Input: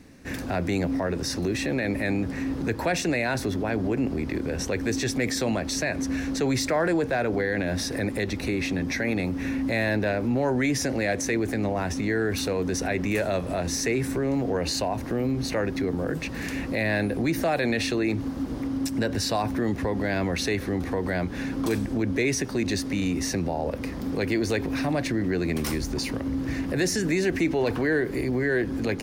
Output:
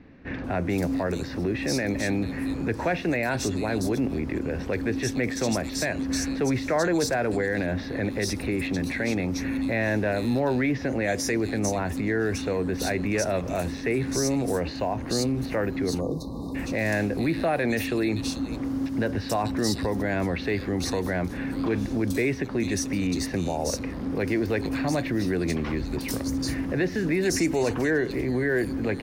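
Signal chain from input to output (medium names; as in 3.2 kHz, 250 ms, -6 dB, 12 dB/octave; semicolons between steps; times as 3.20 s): bands offset in time lows, highs 440 ms, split 3.4 kHz; spectral selection erased 16.00–16.55 s, 1.2–3.6 kHz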